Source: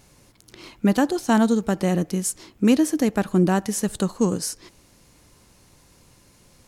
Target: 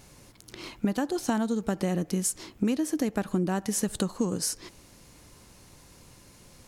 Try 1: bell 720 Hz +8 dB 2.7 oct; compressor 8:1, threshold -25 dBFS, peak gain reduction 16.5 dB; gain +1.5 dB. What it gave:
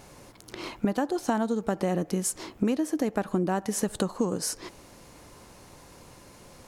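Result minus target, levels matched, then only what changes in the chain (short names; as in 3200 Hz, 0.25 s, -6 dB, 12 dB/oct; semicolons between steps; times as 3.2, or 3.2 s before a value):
1000 Hz band +3.5 dB
remove: bell 720 Hz +8 dB 2.7 oct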